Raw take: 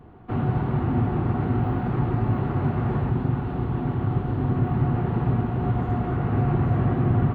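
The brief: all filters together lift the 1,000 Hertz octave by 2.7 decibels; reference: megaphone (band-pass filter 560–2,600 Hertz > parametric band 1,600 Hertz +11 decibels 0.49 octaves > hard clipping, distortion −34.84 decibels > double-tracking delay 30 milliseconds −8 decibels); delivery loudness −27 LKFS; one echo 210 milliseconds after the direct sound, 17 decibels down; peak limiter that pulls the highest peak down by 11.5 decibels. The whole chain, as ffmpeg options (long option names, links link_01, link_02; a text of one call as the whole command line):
ffmpeg -i in.wav -filter_complex "[0:a]equalizer=frequency=1000:width_type=o:gain=3,alimiter=limit=-21.5dB:level=0:latency=1,highpass=560,lowpass=2600,equalizer=frequency=1600:width_type=o:width=0.49:gain=11,aecho=1:1:210:0.141,asoftclip=type=hard:threshold=-25.5dB,asplit=2[link_01][link_02];[link_02]adelay=30,volume=-8dB[link_03];[link_01][link_03]amix=inputs=2:normalize=0,volume=9dB" out.wav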